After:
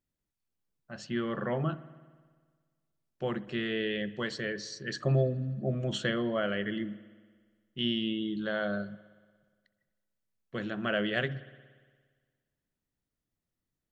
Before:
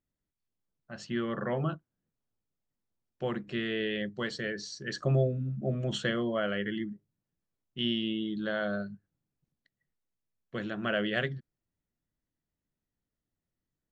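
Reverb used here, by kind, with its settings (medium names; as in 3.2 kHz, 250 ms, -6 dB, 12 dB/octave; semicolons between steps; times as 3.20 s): spring tank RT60 1.6 s, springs 58 ms, chirp 25 ms, DRR 16.5 dB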